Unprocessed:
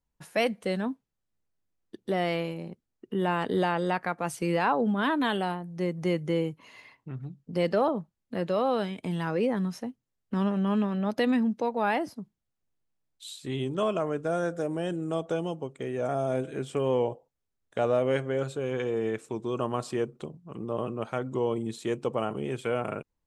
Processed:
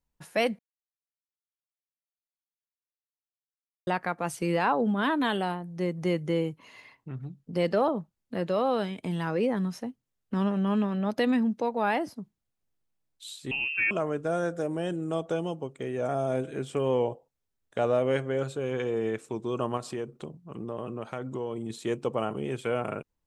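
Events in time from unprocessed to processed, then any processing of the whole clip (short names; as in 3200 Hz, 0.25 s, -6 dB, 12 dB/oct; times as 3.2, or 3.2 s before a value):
0.59–3.87 mute
13.51–13.91 inverted band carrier 2900 Hz
19.77–21.7 compressor 2.5:1, threshold -31 dBFS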